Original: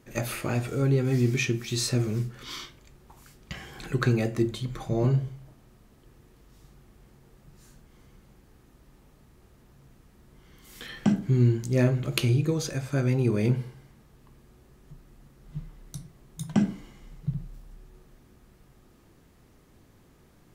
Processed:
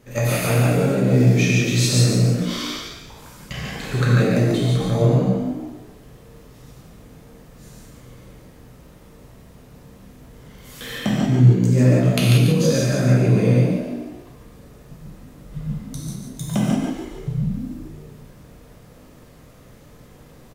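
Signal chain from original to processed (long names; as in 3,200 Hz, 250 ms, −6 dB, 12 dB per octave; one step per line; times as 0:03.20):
thirty-one-band graphic EQ 125 Hz +4 dB, 315 Hz −6 dB, 500 Hz +7 dB
downward compressor 2.5 to 1, threshold −26 dBFS, peak gain reduction 8.5 dB
on a send: echo with shifted repeats 143 ms, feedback 42%, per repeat +58 Hz, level −5 dB
on the sum: reverb whose tail is shaped and stops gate 210 ms flat, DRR −4.5 dB
level +4 dB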